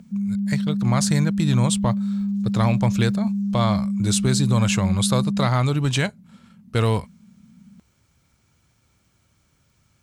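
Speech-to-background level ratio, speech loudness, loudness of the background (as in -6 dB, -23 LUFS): 1.5 dB, -23.0 LUFS, -24.5 LUFS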